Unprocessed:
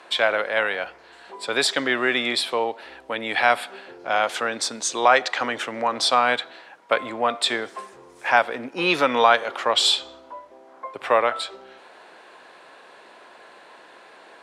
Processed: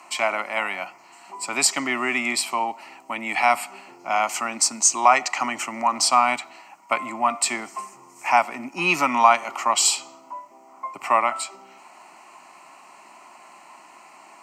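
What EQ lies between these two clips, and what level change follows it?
HPF 150 Hz 24 dB/oct; resonant high shelf 6500 Hz +12.5 dB, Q 1.5; fixed phaser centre 2400 Hz, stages 8; +4.0 dB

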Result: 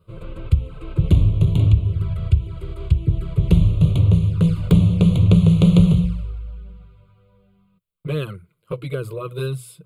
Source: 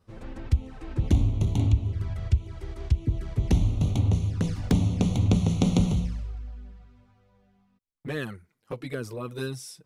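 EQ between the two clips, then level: bell 170 Hz +13.5 dB 0.89 oct; notches 60/120 Hz; fixed phaser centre 1200 Hz, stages 8; +6.5 dB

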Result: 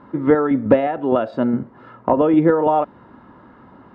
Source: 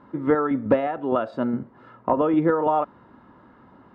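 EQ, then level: dynamic EQ 1200 Hz, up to -6 dB, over -38 dBFS, Q 2.2; air absorption 54 m; +6.0 dB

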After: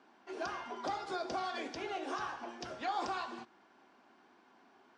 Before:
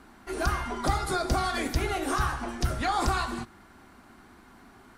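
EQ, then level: speaker cabinet 370–5400 Hz, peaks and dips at 1300 Hz -7 dB, 2000 Hz -6 dB, 4100 Hz -6 dB; -6.5 dB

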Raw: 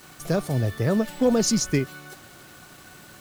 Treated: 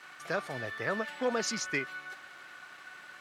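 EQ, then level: band-pass 1700 Hz, Q 1.3; +3.0 dB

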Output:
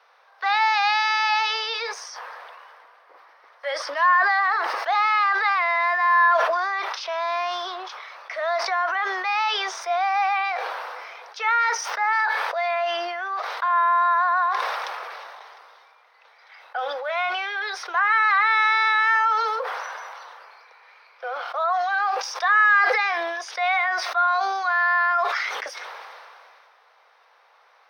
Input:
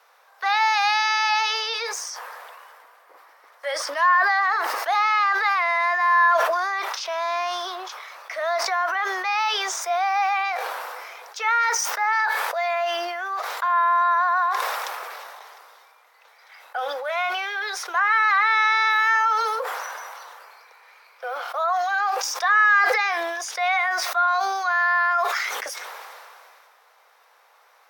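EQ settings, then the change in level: polynomial smoothing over 15 samples; HPF 260 Hz; 0.0 dB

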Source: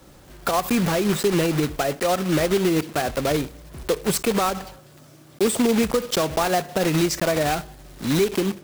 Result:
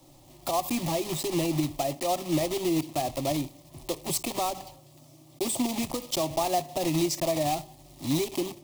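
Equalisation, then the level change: fixed phaser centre 300 Hz, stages 8; -3.5 dB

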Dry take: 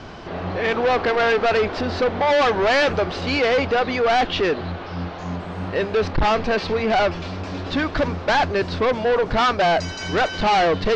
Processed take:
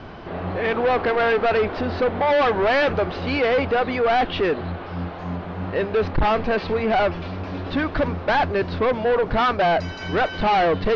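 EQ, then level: air absorption 210 m; 0.0 dB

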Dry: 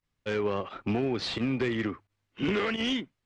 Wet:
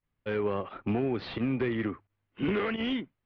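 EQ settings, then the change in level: LPF 4200 Hz 12 dB/oct; air absorption 260 m; 0.0 dB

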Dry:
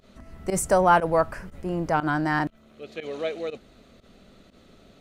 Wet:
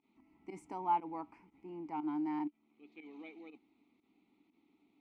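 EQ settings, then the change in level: vowel filter u; low shelf 470 Hz -5.5 dB; -3.0 dB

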